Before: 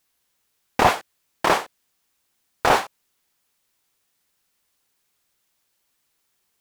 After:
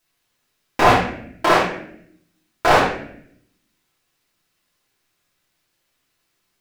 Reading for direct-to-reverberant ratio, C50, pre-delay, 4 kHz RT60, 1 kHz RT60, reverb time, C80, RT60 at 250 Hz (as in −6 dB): −6.0 dB, 3.5 dB, 3 ms, 0.50 s, 0.55 s, 0.65 s, 7.0 dB, 1.1 s